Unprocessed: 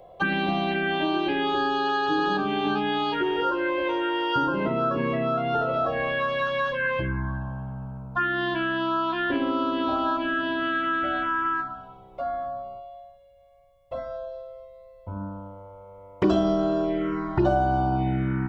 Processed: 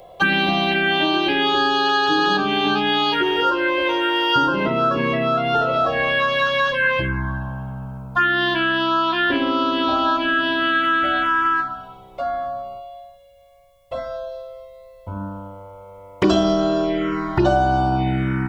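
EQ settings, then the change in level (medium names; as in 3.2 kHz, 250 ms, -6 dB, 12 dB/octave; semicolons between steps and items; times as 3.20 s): treble shelf 2.2 kHz +11.5 dB; +4.0 dB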